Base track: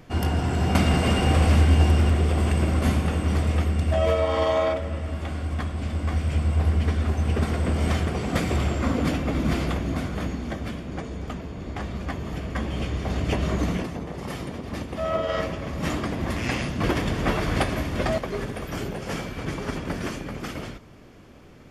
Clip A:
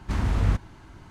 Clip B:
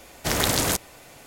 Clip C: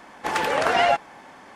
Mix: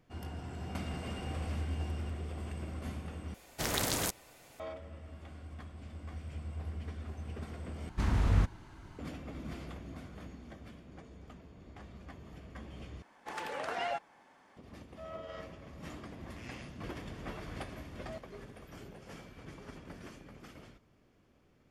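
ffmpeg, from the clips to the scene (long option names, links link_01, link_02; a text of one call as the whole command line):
ffmpeg -i bed.wav -i cue0.wav -i cue1.wav -i cue2.wav -filter_complex "[0:a]volume=-19dB,asplit=4[link_01][link_02][link_03][link_04];[link_01]atrim=end=3.344[link_05];[2:a]atrim=end=1.26,asetpts=PTS-STARTPTS,volume=-10dB[link_06];[link_02]atrim=start=4.596:end=7.894[link_07];[1:a]atrim=end=1.1,asetpts=PTS-STARTPTS,volume=-4.5dB[link_08];[link_03]atrim=start=8.986:end=13.024[link_09];[3:a]atrim=end=1.55,asetpts=PTS-STARTPTS,volume=-16.5dB[link_10];[link_04]atrim=start=14.566[link_11];[link_05][link_06]acrossfade=duration=0.004:curve1=hsin:curve2=hsin[link_12];[link_12][link_07]acrossfade=duration=0.004:curve1=hsin:curve2=hsin[link_13];[link_13][link_08]acrossfade=duration=0.004:curve1=hsin:curve2=hsin[link_14];[link_14][link_09]acrossfade=duration=0.004:curve1=hsin:curve2=hsin[link_15];[link_15][link_10]acrossfade=duration=0.004:curve1=hsin:curve2=hsin[link_16];[link_16][link_11]acrossfade=duration=0.004:curve1=hsin:curve2=hsin" out.wav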